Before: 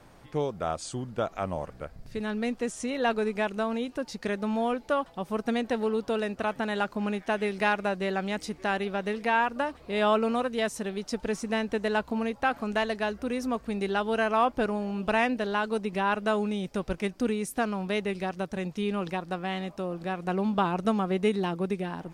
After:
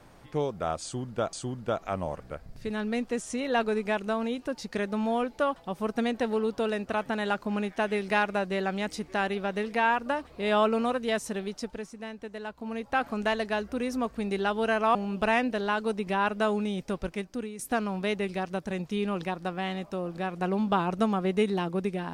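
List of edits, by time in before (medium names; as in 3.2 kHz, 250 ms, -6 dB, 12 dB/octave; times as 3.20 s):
0.83–1.33 s: loop, 2 plays
10.92–12.52 s: dip -11 dB, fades 0.46 s
14.45–14.81 s: delete
16.69–17.45 s: fade out linear, to -11.5 dB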